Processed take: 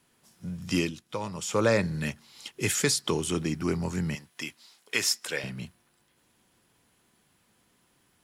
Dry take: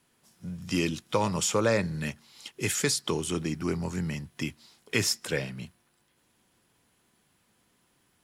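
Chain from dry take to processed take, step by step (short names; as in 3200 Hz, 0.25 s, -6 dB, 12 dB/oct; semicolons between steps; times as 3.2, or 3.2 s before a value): 0.78–1.61 dip -9 dB, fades 0.15 s; 4.15–5.44 HPF 810 Hz 6 dB/oct; gain +1.5 dB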